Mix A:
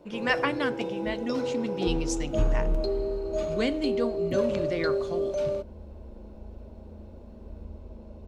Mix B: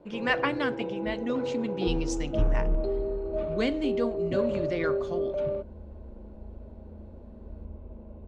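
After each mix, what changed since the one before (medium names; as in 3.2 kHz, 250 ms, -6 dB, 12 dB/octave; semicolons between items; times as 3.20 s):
first sound: add distance through air 410 m; master: add distance through air 54 m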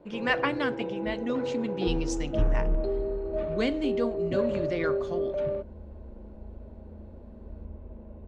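first sound: add peaking EQ 1.8 kHz +6 dB 0.35 oct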